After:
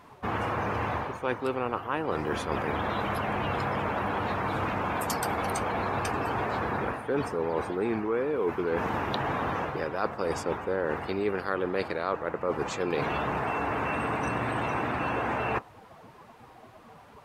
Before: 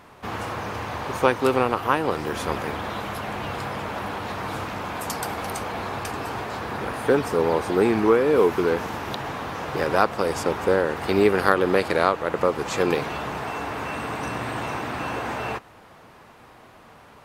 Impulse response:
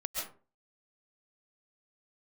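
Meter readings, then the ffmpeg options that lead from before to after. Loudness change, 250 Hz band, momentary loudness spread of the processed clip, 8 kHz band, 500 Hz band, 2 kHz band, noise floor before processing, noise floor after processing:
−5.5 dB, −5.5 dB, 2 LU, −5.5 dB, −7.0 dB, −4.5 dB, −49 dBFS, −52 dBFS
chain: -af "afftdn=noise_reduction=13:noise_floor=-39,areverse,acompressor=threshold=-33dB:ratio=8,areverse,volume=7dB"

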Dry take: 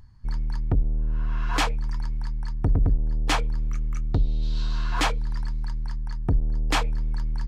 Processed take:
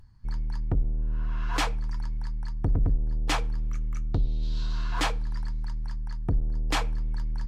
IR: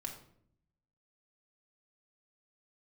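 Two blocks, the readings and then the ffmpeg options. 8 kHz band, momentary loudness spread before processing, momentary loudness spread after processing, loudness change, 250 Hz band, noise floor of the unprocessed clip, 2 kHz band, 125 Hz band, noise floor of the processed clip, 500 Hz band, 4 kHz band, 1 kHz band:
−3.0 dB, 7 LU, 7 LU, −3.0 dB, −3.5 dB, −28 dBFS, −3.5 dB, −3.5 dB, −31 dBFS, −3.5 dB, −3.5 dB, −4.0 dB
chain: -filter_complex "[0:a]asplit=2[link_01][link_02];[1:a]atrim=start_sample=2205,adelay=6[link_03];[link_02][link_03]afir=irnorm=-1:irlink=0,volume=-15.5dB[link_04];[link_01][link_04]amix=inputs=2:normalize=0,volume=-3.5dB" -ar 44100 -c:a libvorbis -b:a 64k

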